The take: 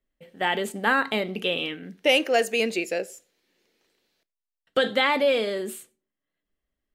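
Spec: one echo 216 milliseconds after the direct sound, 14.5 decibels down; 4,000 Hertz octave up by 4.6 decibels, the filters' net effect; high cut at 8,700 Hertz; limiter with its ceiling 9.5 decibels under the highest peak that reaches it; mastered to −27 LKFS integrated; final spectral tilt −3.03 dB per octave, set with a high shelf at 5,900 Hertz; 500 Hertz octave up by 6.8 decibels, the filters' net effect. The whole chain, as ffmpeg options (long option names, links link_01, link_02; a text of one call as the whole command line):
ffmpeg -i in.wav -af "lowpass=8700,equalizer=frequency=500:width_type=o:gain=7.5,equalizer=frequency=4000:width_type=o:gain=5,highshelf=frequency=5900:gain=5.5,alimiter=limit=-11.5dB:level=0:latency=1,aecho=1:1:216:0.188,volume=-4.5dB" out.wav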